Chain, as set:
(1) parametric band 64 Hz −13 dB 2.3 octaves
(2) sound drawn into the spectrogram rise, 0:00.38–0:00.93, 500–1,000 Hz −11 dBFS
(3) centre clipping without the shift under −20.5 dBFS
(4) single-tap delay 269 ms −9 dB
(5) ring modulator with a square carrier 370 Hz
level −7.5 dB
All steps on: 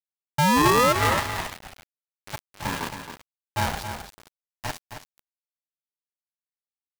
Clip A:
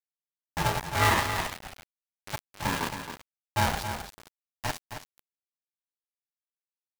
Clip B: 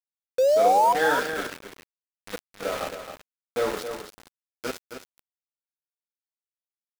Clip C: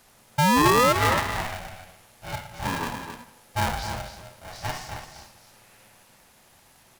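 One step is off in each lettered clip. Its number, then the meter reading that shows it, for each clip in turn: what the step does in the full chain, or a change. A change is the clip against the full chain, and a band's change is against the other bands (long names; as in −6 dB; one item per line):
2, 250 Hz band −5.5 dB
5, 125 Hz band −14.5 dB
3, distortion level −12 dB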